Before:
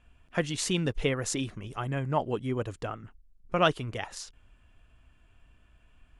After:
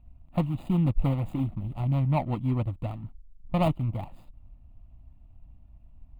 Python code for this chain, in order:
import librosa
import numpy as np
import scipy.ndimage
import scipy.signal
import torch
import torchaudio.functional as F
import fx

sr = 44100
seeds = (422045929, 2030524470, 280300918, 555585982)

y = scipy.signal.medfilt(x, 41)
y = fx.tilt_shelf(y, sr, db=5.0, hz=1300.0)
y = fx.fixed_phaser(y, sr, hz=1600.0, stages=6)
y = y * 10.0 ** (4.5 / 20.0)